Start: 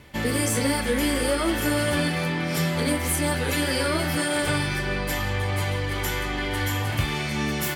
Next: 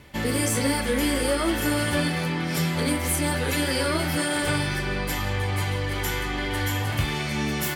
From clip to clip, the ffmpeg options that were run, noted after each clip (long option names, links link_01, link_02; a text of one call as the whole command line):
ffmpeg -i in.wav -af "bandreject=frequency=117.9:width_type=h:width=4,bandreject=frequency=235.8:width_type=h:width=4,bandreject=frequency=353.7:width_type=h:width=4,bandreject=frequency=471.6:width_type=h:width=4,bandreject=frequency=589.5:width_type=h:width=4,bandreject=frequency=707.4:width_type=h:width=4,bandreject=frequency=825.3:width_type=h:width=4,bandreject=frequency=943.2:width_type=h:width=4,bandreject=frequency=1061.1:width_type=h:width=4,bandreject=frequency=1179:width_type=h:width=4,bandreject=frequency=1296.9:width_type=h:width=4,bandreject=frequency=1414.8:width_type=h:width=4,bandreject=frequency=1532.7:width_type=h:width=4,bandreject=frequency=1650.6:width_type=h:width=4,bandreject=frequency=1768.5:width_type=h:width=4,bandreject=frequency=1886.4:width_type=h:width=4,bandreject=frequency=2004.3:width_type=h:width=4,bandreject=frequency=2122.2:width_type=h:width=4,bandreject=frequency=2240.1:width_type=h:width=4,bandreject=frequency=2358:width_type=h:width=4,bandreject=frequency=2475.9:width_type=h:width=4,bandreject=frequency=2593.8:width_type=h:width=4,bandreject=frequency=2711.7:width_type=h:width=4,bandreject=frequency=2829.6:width_type=h:width=4,bandreject=frequency=2947.5:width_type=h:width=4,bandreject=frequency=3065.4:width_type=h:width=4,bandreject=frequency=3183.3:width_type=h:width=4,bandreject=frequency=3301.2:width_type=h:width=4,bandreject=frequency=3419.1:width_type=h:width=4,bandreject=frequency=3537:width_type=h:width=4" out.wav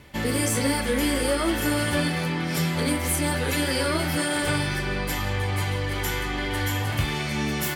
ffmpeg -i in.wav -af anull out.wav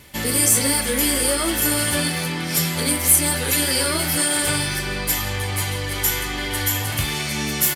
ffmpeg -i in.wav -af "crystalizer=i=3:c=0,aresample=32000,aresample=44100" out.wav